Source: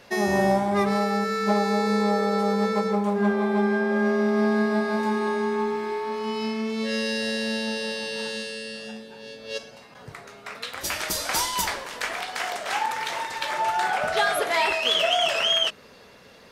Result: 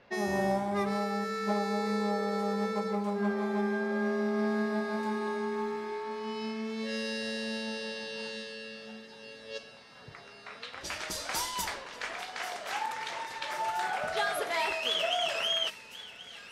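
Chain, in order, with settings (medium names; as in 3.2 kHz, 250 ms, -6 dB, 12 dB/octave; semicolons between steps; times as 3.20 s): level-controlled noise filter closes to 2.8 kHz, open at -21 dBFS; on a send: feedback echo behind a high-pass 1081 ms, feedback 79%, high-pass 1.8 kHz, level -15 dB; on the sum: trim -8 dB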